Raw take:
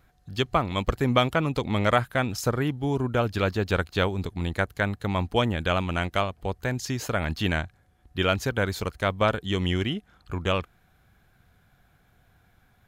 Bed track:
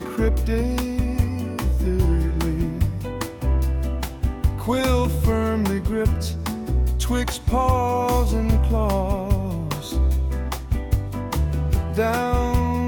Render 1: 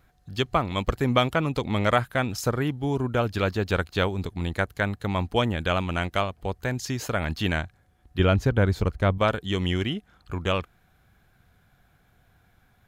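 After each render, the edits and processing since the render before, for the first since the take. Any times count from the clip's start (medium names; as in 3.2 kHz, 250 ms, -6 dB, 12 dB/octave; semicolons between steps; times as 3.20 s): 8.19–9.18 s: tilt EQ -2.5 dB/octave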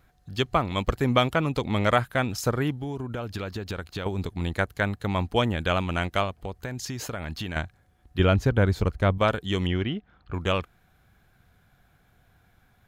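2.75–4.06 s: compression 12:1, threshold -27 dBFS; 6.41–7.56 s: compression, threshold -28 dBFS; 9.67–10.34 s: distance through air 220 m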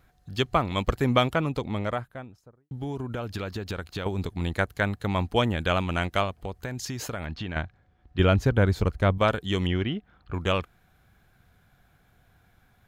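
1.06–2.71 s: studio fade out; 7.26–8.19 s: distance through air 150 m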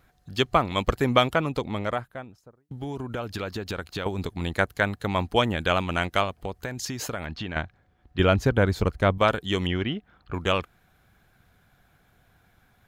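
bass shelf 150 Hz -3.5 dB; harmonic-percussive split percussive +3 dB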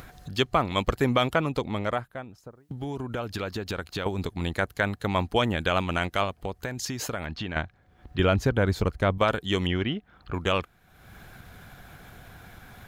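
peak limiter -10.5 dBFS, peak gain reduction 5.5 dB; upward compressor, threshold -33 dBFS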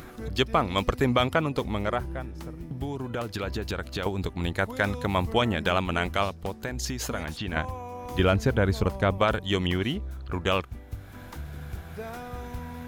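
add bed track -17 dB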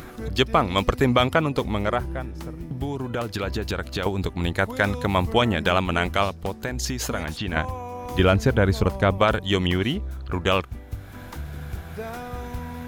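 trim +4 dB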